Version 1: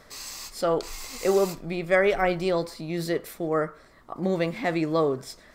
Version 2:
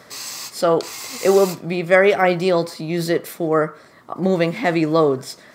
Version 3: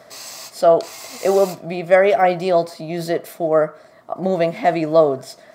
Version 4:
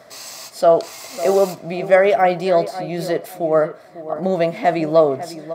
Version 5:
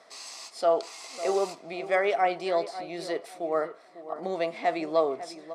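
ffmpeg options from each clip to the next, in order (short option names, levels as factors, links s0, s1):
-af "highpass=f=100:w=0.5412,highpass=f=100:w=1.3066,volume=2.37"
-af "equalizer=f=660:t=o:w=0.36:g=14,volume=0.631"
-filter_complex "[0:a]asplit=2[s0][s1];[s1]adelay=549,lowpass=f=1600:p=1,volume=0.237,asplit=2[s2][s3];[s3]adelay=549,lowpass=f=1600:p=1,volume=0.3,asplit=2[s4][s5];[s5]adelay=549,lowpass=f=1600:p=1,volume=0.3[s6];[s0][s2][s4][s6]amix=inputs=4:normalize=0"
-af "highpass=390,equalizer=f=590:t=q:w=4:g=-8,equalizer=f=1600:t=q:w=4:g=-5,equalizer=f=7200:t=q:w=4:g=-4,lowpass=f=9600:w=0.5412,lowpass=f=9600:w=1.3066,volume=0.501"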